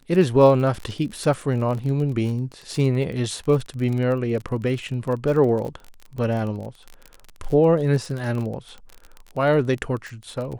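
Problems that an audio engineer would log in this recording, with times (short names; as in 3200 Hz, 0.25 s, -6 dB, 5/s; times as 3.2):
crackle 28/s -28 dBFS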